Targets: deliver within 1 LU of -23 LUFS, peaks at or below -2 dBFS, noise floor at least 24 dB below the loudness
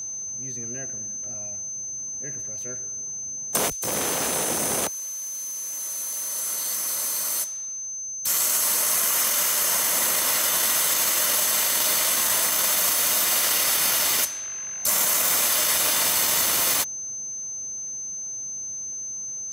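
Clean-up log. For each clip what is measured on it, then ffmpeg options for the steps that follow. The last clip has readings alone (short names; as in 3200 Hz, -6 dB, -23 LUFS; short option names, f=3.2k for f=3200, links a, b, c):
steady tone 6200 Hz; tone level -30 dBFS; loudness -22.0 LUFS; peak -8.5 dBFS; loudness target -23.0 LUFS
-> -af "bandreject=f=6.2k:w=30"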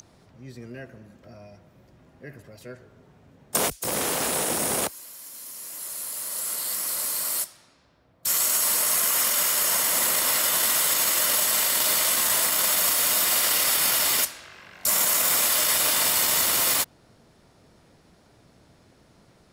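steady tone none; loudness -21.0 LUFS; peak -9.0 dBFS; loudness target -23.0 LUFS
-> -af "volume=-2dB"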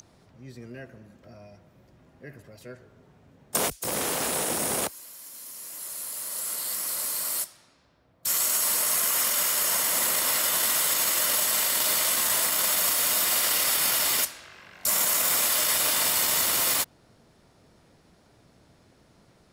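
loudness -23.0 LUFS; peak -11.0 dBFS; noise floor -60 dBFS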